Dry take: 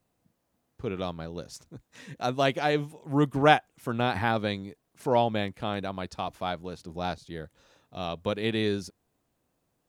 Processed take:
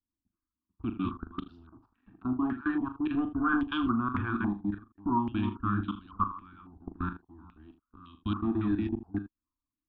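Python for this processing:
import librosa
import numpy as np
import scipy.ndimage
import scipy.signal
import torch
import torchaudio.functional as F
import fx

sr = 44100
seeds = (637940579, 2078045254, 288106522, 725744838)

y = fx.reverse_delay(x, sr, ms=242, wet_db=-3.0)
y = fx.dereverb_blind(y, sr, rt60_s=0.6)
y = scipy.signal.sosfilt(scipy.signal.ellip(3, 1.0, 40, [320.0, 1100.0], 'bandstop', fs=sr, output='sos'), y)
y = fx.low_shelf(y, sr, hz=320.0, db=9.5)
y = fx.leveller(y, sr, passes=2)
y = fx.level_steps(y, sr, step_db=22)
y = fx.air_absorb(y, sr, metres=440.0)
y = fx.fixed_phaser(y, sr, hz=550.0, stages=6)
y = fx.room_early_taps(y, sr, ms=(39, 79), db=(-9.5, -14.0))
y = fx.filter_held_lowpass(y, sr, hz=3.6, low_hz=780.0, high_hz=3200.0)
y = y * librosa.db_to_amplitude(-2.5)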